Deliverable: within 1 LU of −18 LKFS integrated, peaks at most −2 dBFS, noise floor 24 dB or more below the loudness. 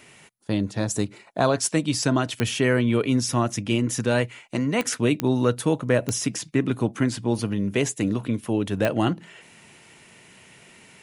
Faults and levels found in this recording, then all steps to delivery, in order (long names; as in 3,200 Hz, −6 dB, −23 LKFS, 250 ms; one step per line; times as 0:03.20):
number of clicks 5; integrated loudness −24.0 LKFS; sample peak −7.0 dBFS; target loudness −18.0 LKFS
→ click removal
level +6 dB
brickwall limiter −2 dBFS